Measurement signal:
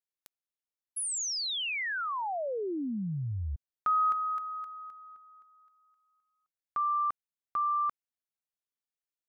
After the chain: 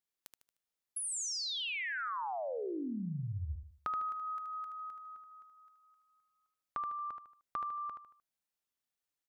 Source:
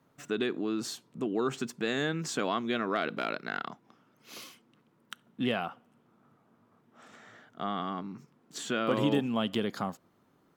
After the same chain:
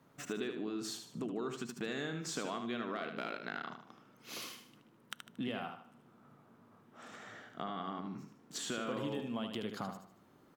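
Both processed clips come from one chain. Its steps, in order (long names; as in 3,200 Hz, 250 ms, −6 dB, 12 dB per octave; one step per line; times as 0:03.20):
downward compressor 3 to 1, threshold −42 dBFS
repeating echo 76 ms, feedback 38%, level −7 dB
level +2 dB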